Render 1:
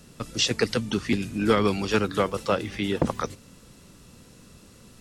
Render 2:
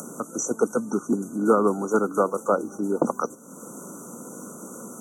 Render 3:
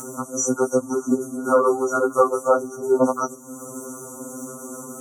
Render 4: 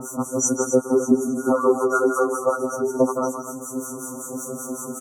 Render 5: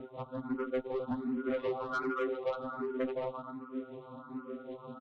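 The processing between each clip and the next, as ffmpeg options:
-af "acompressor=mode=upward:threshold=0.0501:ratio=2.5,afftfilt=real='re*(1-between(b*sr/4096,1500,5800))':imag='im*(1-between(b*sr/4096,1500,5800))':win_size=4096:overlap=0.75,highpass=f=210:w=0.5412,highpass=f=210:w=1.3066,volume=1.41"
-af "afftfilt=real='re*2.45*eq(mod(b,6),0)':imag='im*2.45*eq(mod(b,6),0)':win_size=2048:overlap=0.75,volume=2.24"
-filter_complex "[0:a]alimiter=limit=0.2:level=0:latency=1:release=187,acrossover=split=950[s0][s1];[s0]aeval=exprs='val(0)*(1-1/2+1/2*cos(2*PI*5.3*n/s))':c=same[s2];[s1]aeval=exprs='val(0)*(1-1/2-1/2*cos(2*PI*5.3*n/s))':c=same[s3];[s2][s3]amix=inputs=2:normalize=0,asplit=2[s4][s5];[s5]aecho=0:1:163.3|259.5:0.355|0.316[s6];[s4][s6]amix=inputs=2:normalize=0,volume=2.37"
-filter_complex "[0:a]aresample=8000,acrusher=bits=6:mode=log:mix=0:aa=0.000001,aresample=44100,asoftclip=type=tanh:threshold=0.112,asplit=2[s0][s1];[s1]afreqshift=1.3[s2];[s0][s2]amix=inputs=2:normalize=1,volume=0.422"

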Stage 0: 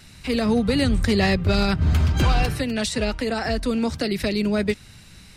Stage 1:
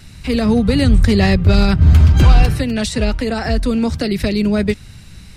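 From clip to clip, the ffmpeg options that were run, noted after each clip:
-af "lowshelf=f=180:g=9,volume=1.41"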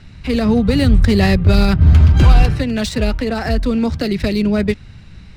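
-af "adynamicsmooth=sensitivity=3.5:basefreq=3600"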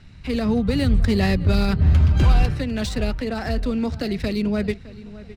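-filter_complex "[0:a]asplit=2[s0][s1];[s1]adelay=611,lowpass=f=2700:p=1,volume=0.141,asplit=2[s2][s3];[s3]adelay=611,lowpass=f=2700:p=1,volume=0.36,asplit=2[s4][s5];[s5]adelay=611,lowpass=f=2700:p=1,volume=0.36[s6];[s0][s2][s4][s6]amix=inputs=4:normalize=0,volume=0.473"

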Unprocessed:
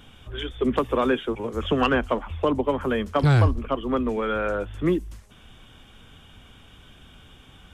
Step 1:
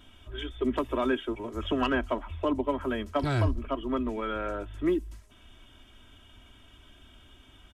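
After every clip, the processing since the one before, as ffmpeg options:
-af "aecho=1:1:3.1:0.65,volume=0.447"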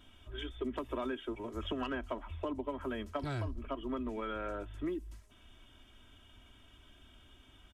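-af "acompressor=threshold=0.0398:ratio=10,volume=0.562"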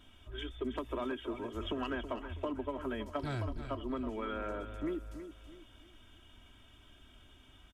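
-af "aecho=1:1:325|650|975|1300:0.299|0.107|0.0387|0.0139"

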